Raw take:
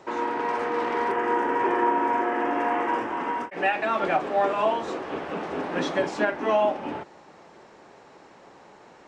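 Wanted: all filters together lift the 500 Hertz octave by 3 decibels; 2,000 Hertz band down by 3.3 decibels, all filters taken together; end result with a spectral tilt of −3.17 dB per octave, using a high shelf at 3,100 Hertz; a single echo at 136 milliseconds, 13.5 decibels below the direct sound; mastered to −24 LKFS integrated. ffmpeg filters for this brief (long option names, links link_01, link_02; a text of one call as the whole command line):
ffmpeg -i in.wav -af "equalizer=frequency=500:width_type=o:gain=4,equalizer=frequency=2000:width_type=o:gain=-6,highshelf=frequency=3100:gain=4.5,aecho=1:1:136:0.211,volume=0.5dB" out.wav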